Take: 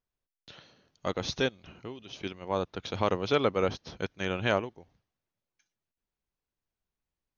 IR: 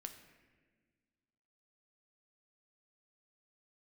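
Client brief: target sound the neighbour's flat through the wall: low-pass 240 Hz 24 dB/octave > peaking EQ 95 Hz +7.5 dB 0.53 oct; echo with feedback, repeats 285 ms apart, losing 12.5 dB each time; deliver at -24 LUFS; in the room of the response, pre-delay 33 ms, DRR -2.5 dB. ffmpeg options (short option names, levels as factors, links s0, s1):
-filter_complex "[0:a]aecho=1:1:285|570|855:0.237|0.0569|0.0137,asplit=2[s0][s1];[1:a]atrim=start_sample=2205,adelay=33[s2];[s1][s2]afir=irnorm=-1:irlink=0,volume=2.24[s3];[s0][s3]amix=inputs=2:normalize=0,lowpass=f=240:w=0.5412,lowpass=f=240:w=1.3066,equalizer=f=95:t=o:w=0.53:g=7.5,volume=2.82"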